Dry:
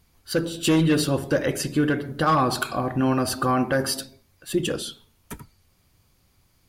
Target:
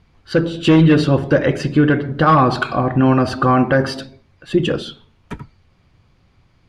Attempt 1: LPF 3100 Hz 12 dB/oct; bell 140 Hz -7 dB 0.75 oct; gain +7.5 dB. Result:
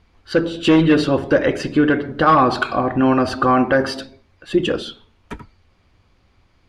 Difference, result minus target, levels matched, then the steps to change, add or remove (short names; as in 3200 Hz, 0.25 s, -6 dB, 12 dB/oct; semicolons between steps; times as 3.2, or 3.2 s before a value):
125 Hz band -7.0 dB
change: bell 140 Hz +3 dB 0.75 oct